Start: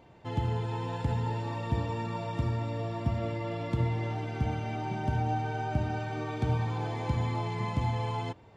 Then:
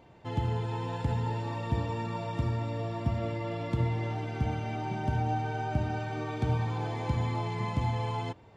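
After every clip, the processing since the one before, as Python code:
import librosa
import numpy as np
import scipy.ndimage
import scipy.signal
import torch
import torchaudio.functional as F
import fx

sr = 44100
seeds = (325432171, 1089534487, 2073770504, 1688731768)

y = x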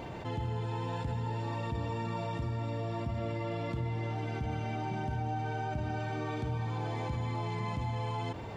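y = fx.env_flatten(x, sr, amount_pct=70)
y = y * librosa.db_to_amplitude(-8.0)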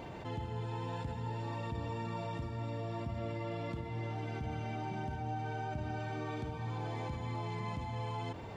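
y = fx.hum_notches(x, sr, base_hz=60, count=2)
y = y * librosa.db_to_amplitude(-3.5)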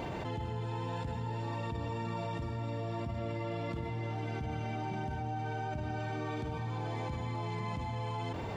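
y = fx.env_flatten(x, sr, amount_pct=70)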